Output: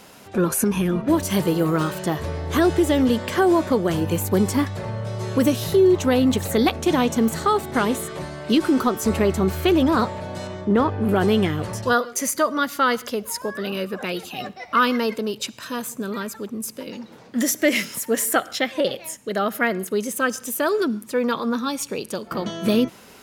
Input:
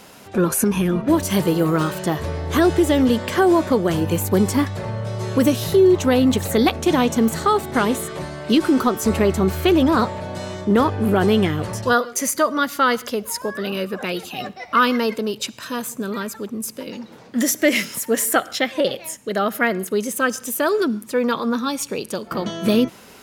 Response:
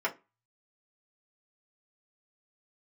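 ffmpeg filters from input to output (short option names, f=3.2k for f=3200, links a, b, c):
-filter_complex "[0:a]asettb=1/sr,asplit=3[a][b][c];[a]atrim=end=10.474[d];[b]atrim=start=10.47:end=11.09,asetpts=PTS-STARTPTS,afade=t=in:d=0.004:c=qsin,afade=t=out:st=0.616:d=0.004:c=qsin,lowpass=f=2.5k:p=1[e];[c]atrim=start=11.086[f];[d][e]acrossfade=d=0.004:c1=hsin:c2=qsin[g];[g][f]acrossfade=d=0.004:c1=qsin:c2=hsin,volume=-2dB"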